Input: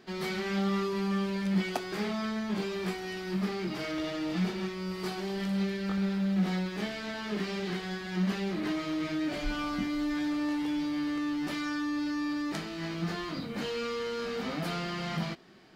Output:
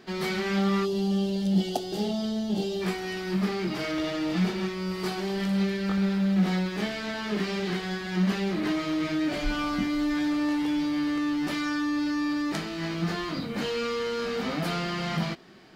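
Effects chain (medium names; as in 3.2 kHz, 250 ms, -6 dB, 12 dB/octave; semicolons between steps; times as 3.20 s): time-frequency box 0.85–2.81 s, 870–2700 Hz -16 dB; trim +4.5 dB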